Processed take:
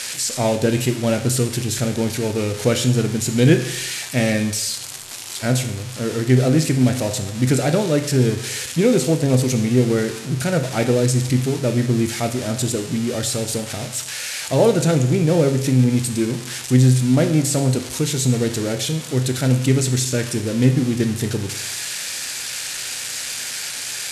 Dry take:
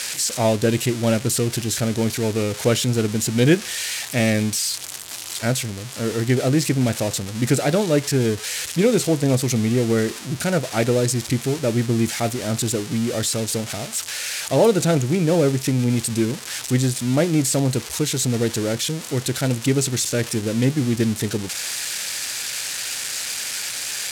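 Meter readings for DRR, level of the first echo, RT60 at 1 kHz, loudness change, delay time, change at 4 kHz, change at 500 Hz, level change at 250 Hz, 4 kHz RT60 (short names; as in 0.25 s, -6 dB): 6.5 dB, none, 0.85 s, +1.5 dB, none, 0.0 dB, +1.0 dB, +2.0 dB, 0.85 s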